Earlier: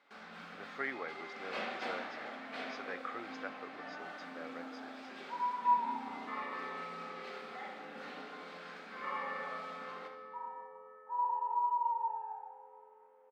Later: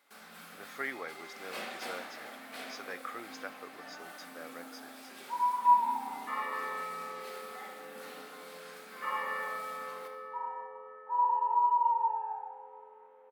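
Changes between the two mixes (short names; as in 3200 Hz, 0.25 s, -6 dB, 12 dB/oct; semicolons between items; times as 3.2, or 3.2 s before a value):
first sound -3.0 dB; second sound +5.0 dB; master: remove air absorption 180 m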